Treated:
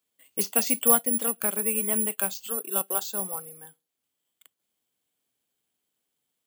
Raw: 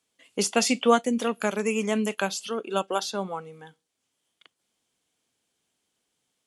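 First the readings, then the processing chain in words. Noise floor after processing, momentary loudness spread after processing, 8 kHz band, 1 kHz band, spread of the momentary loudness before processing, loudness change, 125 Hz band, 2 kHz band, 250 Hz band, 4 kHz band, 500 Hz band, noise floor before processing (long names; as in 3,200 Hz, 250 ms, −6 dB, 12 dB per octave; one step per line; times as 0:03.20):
−83 dBFS, 13 LU, +7.0 dB, −6.5 dB, 12 LU, +2.0 dB, −6.5 dB, −6.5 dB, −6.5 dB, −7.0 dB, −6.5 dB, −80 dBFS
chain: bad sample-rate conversion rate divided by 4×, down filtered, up zero stuff
level −6.5 dB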